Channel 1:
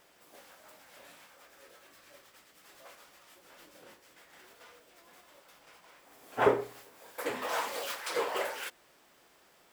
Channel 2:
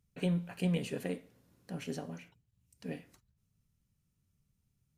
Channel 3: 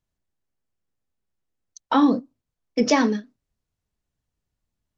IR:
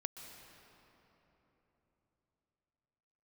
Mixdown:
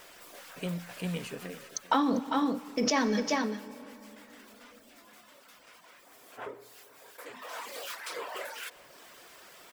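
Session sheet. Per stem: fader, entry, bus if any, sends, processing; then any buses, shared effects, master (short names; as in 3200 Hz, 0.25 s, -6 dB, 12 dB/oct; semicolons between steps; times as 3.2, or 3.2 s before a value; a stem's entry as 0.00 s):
-16.0 dB, 0.00 s, no bus, send -8.5 dB, echo send -21 dB, notch 830 Hz, Q 12; reverb removal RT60 0.59 s; fast leveller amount 50%
-7.5 dB, 0.40 s, bus A, no send, echo send -9.5 dB, auto duck -9 dB, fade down 0.45 s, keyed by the third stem
+2.5 dB, 0.00 s, bus A, send -10 dB, echo send -8 dB, dry
bus A: 0.0 dB, negative-ratio compressor -21 dBFS, ratio -1; limiter -15 dBFS, peak gain reduction 8.5 dB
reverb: on, RT60 3.8 s, pre-delay 0.117 s
echo: echo 0.397 s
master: low shelf 470 Hz -6 dB; vocal rider within 4 dB 0.5 s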